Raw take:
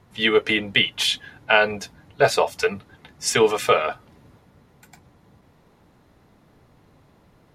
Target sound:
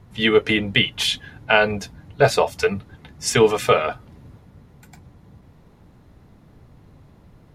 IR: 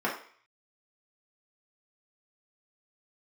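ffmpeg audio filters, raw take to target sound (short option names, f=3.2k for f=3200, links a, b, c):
-af "lowshelf=f=210:g=11.5"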